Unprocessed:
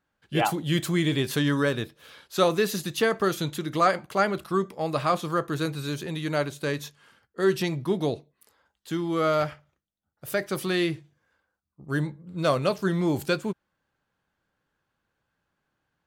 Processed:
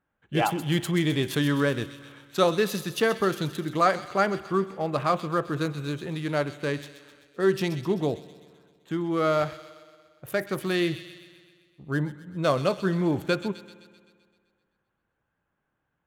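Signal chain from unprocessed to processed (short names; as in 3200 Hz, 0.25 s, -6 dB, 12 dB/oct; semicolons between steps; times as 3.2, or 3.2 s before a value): Wiener smoothing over 9 samples; thin delay 0.129 s, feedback 59%, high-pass 2800 Hz, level -8.5 dB; spring tank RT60 1.9 s, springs 57 ms, chirp 65 ms, DRR 18 dB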